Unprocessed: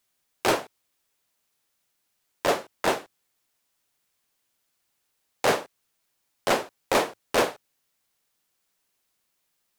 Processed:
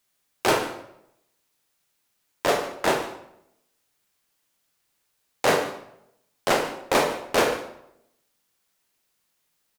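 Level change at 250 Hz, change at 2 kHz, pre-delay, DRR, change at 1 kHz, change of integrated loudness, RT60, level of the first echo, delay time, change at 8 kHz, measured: +2.5 dB, +2.5 dB, 21 ms, 4.0 dB, +2.0 dB, +2.0 dB, 0.80 s, -17.0 dB, 147 ms, +2.0 dB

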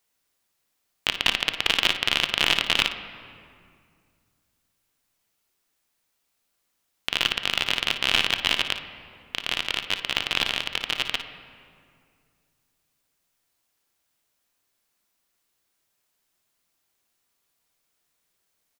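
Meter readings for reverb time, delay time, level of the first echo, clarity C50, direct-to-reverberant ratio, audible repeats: 2.2 s, 55 ms, -13.0 dB, 7.5 dB, 6.5 dB, 1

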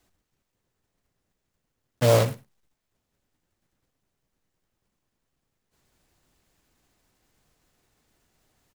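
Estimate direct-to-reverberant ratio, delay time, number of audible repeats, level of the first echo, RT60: no reverb, 105 ms, 1, -22.0 dB, no reverb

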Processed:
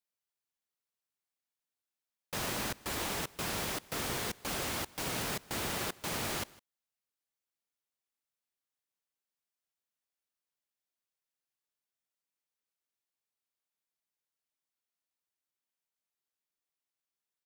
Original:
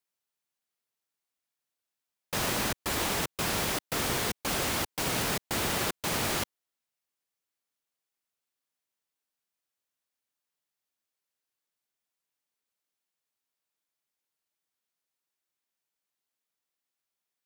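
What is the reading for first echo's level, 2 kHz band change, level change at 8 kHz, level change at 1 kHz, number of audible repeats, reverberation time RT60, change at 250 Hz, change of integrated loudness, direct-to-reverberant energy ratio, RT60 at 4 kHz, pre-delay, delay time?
-22.5 dB, -6.0 dB, -6.0 dB, -6.0 dB, 1, no reverb, -6.0 dB, -6.0 dB, no reverb, no reverb, no reverb, 156 ms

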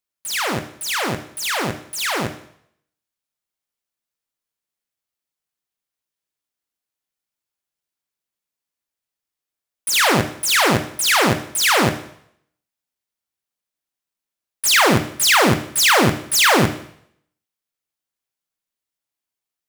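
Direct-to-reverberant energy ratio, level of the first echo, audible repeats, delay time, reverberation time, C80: 8.0 dB, no echo, no echo, no echo, 0.65 s, 14.5 dB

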